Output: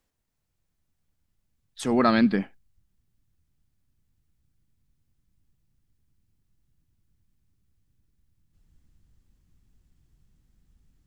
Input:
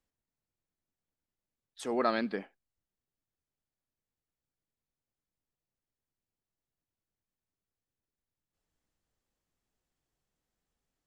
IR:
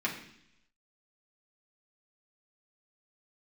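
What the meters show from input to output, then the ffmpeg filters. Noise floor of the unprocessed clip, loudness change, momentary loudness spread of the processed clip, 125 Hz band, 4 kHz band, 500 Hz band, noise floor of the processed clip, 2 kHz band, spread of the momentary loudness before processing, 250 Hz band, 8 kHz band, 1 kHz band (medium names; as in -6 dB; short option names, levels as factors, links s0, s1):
under -85 dBFS, +9.5 dB, 14 LU, +18.0 dB, +8.5 dB, +6.0 dB, -77 dBFS, +8.0 dB, 12 LU, +13.5 dB, +8.5 dB, +7.0 dB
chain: -af "asubboost=boost=10:cutoff=180,volume=2.66"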